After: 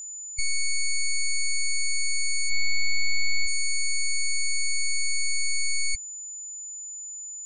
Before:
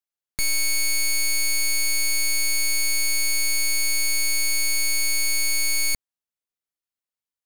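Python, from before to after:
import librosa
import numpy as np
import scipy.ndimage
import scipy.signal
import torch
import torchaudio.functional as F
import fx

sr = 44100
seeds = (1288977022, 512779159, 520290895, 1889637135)

y = fx.comb(x, sr, ms=4.9, depth=0.69, at=(2.5, 3.46))
y = fx.spec_gate(y, sr, threshold_db=-15, keep='strong')
y = y + 10.0 ** (-35.0 / 20.0) * np.sin(2.0 * np.pi * 7000.0 * np.arange(len(y)) / sr)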